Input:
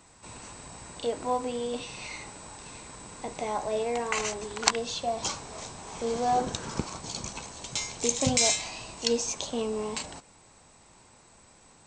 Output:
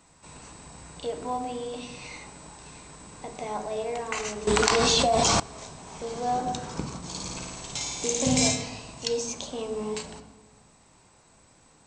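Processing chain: 6.97–8.48 flutter echo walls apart 9.4 m, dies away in 1.4 s; on a send at -8 dB: reverb RT60 1.1 s, pre-delay 3 ms; 4.47–5.4 on the sum: fast leveller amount 100%; gain -2.5 dB

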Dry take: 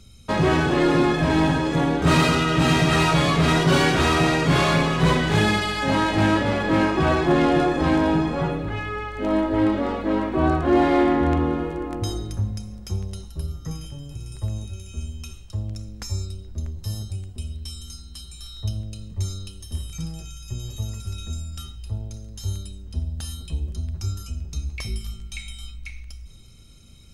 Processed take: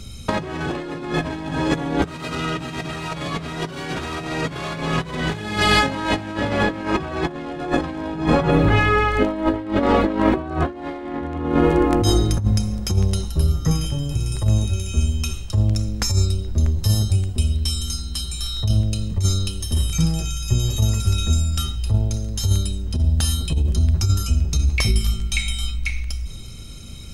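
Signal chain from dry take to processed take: negative-ratio compressor -26 dBFS, ratio -0.5; gain +7.5 dB

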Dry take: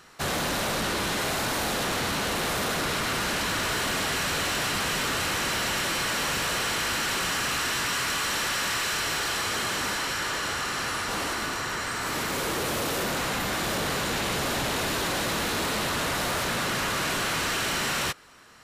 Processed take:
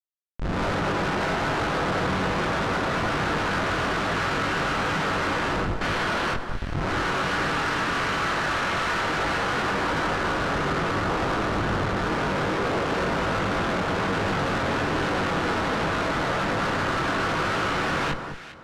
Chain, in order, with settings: reverb RT60 0.25 s, pre-delay 6 ms, DRR 11.5 dB; 5.81–6.34 careless resampling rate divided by 6×, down none, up zero stuff; AGC gain up to 10 dB; Schmitt trigger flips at -17 dBFS; Bessel low-pass 2900 Hz, order 2; high shelf 2300 Hz -2.5 dB; chorus 1.2 Hz, delay 19.5 ms, depth 2.7 ms; bell 1400 Hz +4 dB 0.64 oct; soft clip -22.5 dBFS, distortion -14 dB; echo with dull and thin repeats by turns 0.203 s, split 1400 Hz, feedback 50%, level -7 dB

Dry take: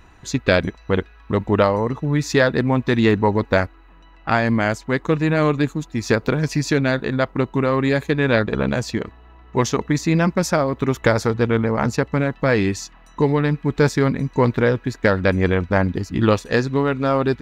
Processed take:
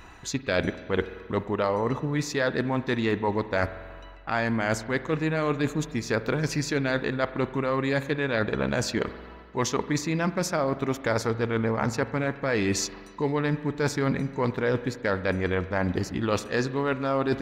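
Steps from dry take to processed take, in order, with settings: low shelf 270 Hz -6 dB; reverse; compressor 6:1, threshold -27 dBFS, peak gain reduction 14.5 dB; reverse; reverb RT60 1.7 s, pre-delay 44 ms, DRR 13 dB; gain +4 dB

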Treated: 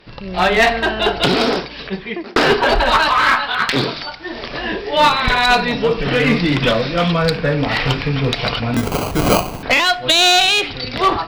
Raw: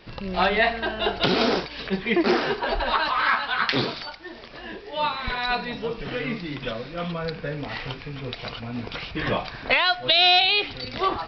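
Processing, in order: 0.87–2.36 fade out; 6.82–7.37 high shelf 4000 Hz +7 dB; AGC gain up to 16 dB; one-sided clip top -12.5 dBFS; 8.76–9.63 sample-rate reducer 1800 Hz, jitter 0%; reverb RT60 0.55 s, pre-delay 7 ms, DRR 16 dB; stuck buffer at 3.5/8.72/9.75, samples 1024, times 1; gain +2 dB

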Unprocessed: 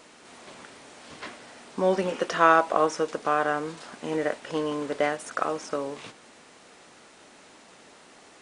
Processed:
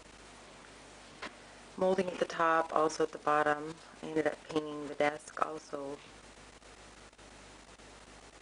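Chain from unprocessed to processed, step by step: hum 50 Hz, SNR 30 dB; level quantiser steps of 13 dB; gain -1.5 dB

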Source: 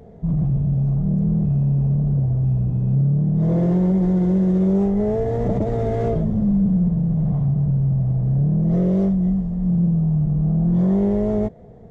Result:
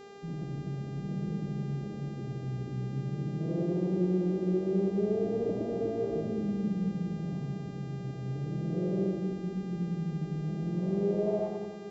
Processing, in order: band-pass sweep 340 Hz -> 1100 Hz, 10.98–11.57; split-band echo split 420 Hz, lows 0.248 s, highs 91 ms, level -3 dB; buzz 400 Hz, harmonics 19, -44 dBFS -7 dB/oct; gain -5.5 dB

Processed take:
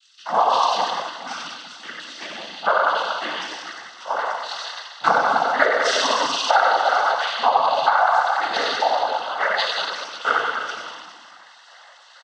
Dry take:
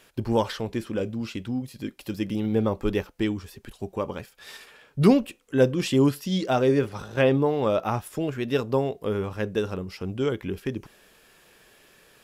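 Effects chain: LFO high-pass square 2.1 Hz 720–4100 Hz; transient shaper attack +7 dB, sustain +3 dB; tilt +2.5 dB/oct; reverse bouncing-ball echo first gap 90 ms, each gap 1.1×, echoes 5; reverb RT60 1.1 s, pre-delay 3 ms, DRR -6.5 dB; compressor, threshold -4 dBFS, peak gain reduction 9.5 dB; noise vocoder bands 16; bell 390 Hz -12 dB 0.65 oct; gain -7.5 dB

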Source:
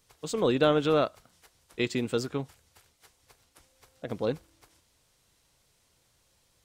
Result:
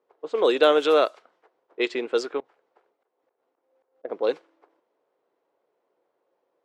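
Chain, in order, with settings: Chebyshev high-pass 380 Hz, order 3; 2.4–4.05 auto swell 0.203 s; low-pass opened by the level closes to 730 Hz, open at -21.5 dBFS; gain +6.5 dB

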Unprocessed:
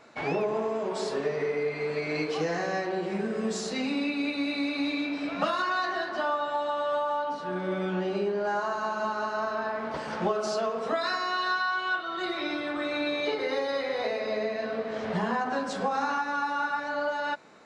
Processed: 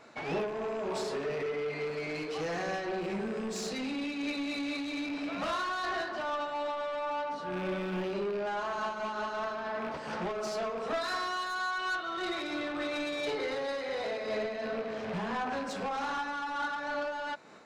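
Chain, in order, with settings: rattling part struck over -39 dBFS, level -33 dBFS; soft clip -28.5 dBFS, distortion -12 dB; noise-modulated level, depth 55%; gain +1.5 dB

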